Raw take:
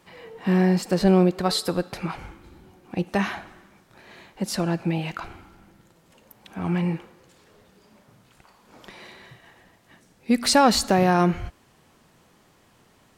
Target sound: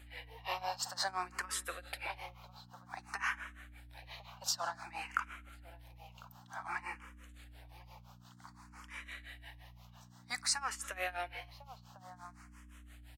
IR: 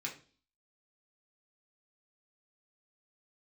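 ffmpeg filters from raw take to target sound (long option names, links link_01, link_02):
-filter_complex "[0:a]highpass=frequency=780:width=0.5412,highpass=frequency=780:width=1.3066,acompressor=threshold=-30dB:ratio=6,tremolo=f=5.8:d=0.92,asplit=2[link_01][link_02];[link_02]adelay=1050,volume=-16dB,highshelf=frequency=4000:gain=-23.6[link_03];[link_01][link_03]amix=inputs=2:normalize=0,aeval=exprs='val(0)+0.00141*(sin(2*PI*60*n/s)+sin(2*PI*2*60*n/s)/2+sin(2*PI*3*60*n/s)/3+sin(2*PI*4*60*n/s)/4+sin(2*PI*5*60*n/s)/5)':channel_layout=same,asplit=2[link_04][link_05];[link_05]afreqshift=0.54[link_06];[link_04][link_06]amix=inputs=2:normalize=1,volume=4.5dB"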